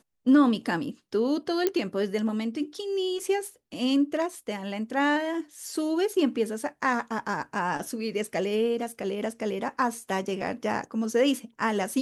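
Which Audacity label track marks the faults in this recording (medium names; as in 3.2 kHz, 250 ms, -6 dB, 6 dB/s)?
1.670000	1.670000	pop -10 dBFS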